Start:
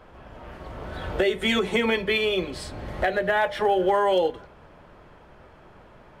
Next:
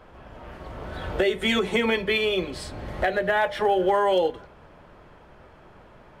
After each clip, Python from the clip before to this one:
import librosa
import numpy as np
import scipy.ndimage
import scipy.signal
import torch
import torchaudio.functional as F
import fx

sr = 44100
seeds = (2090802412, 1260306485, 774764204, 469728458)

y = x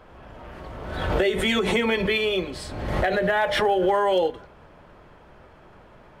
y = fx.pre_swell(x, sr, db_per_s=43.0)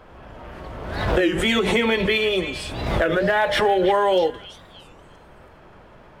y = fx.echo_stepped(x, sr, ms=325, hz=2700.0, octaves=0.7, feedback_pct=70, wet_db=-9)
y = fx.record_warp(y, sr, rpm=33.33, depth_cents=250.0)
y = y * 10.0 ** (2.5 / 20.0)